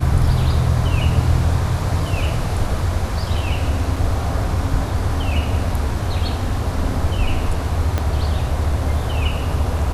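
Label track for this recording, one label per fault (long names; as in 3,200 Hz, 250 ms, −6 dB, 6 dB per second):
3.960000	3.960000	drop-out 3.8 ms
7.980000	7.980000	click −7 dBFS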